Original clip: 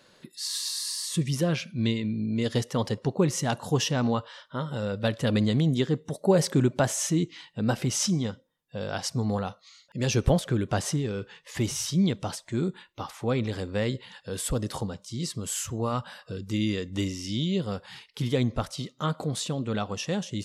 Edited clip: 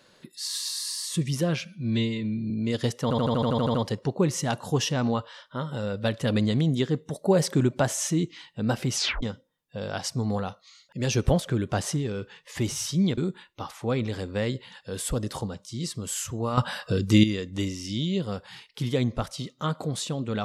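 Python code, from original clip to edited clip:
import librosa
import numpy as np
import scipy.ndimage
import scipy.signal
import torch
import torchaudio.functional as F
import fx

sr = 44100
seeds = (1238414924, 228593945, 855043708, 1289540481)

y = fx.edit(x, sr, fx.stretch_span(start_s=1.65, length_s=0.57, factor=1.5),
    fx.stutter(start_s=2.74, slice_s=0.08, count=10),
    fx.tape_stop(start_s=7.95, length_s=0.27),
    fx.cut(start_s=12.17, length_s=0.4),
    fx.clip_gain(start_s=15.97, length_s=0.66, db=10.5), tone=tone)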